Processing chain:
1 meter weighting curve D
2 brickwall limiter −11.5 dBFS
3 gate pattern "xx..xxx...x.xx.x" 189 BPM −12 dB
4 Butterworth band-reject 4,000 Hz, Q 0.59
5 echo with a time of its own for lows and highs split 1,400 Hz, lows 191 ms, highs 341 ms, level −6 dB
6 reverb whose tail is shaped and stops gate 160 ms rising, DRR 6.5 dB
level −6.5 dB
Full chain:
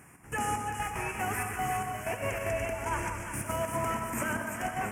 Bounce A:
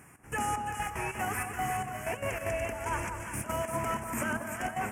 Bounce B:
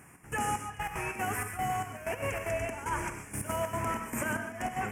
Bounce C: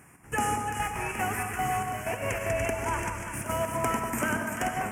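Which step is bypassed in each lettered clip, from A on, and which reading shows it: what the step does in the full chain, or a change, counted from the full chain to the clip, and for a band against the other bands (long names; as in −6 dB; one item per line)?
6, echo-to-direct ratio −2.0 dB to −4.5 dB
5, echo-to-direct ratio −2.0 dB to −6.5 dB
2, average gain reduction 2.0 dB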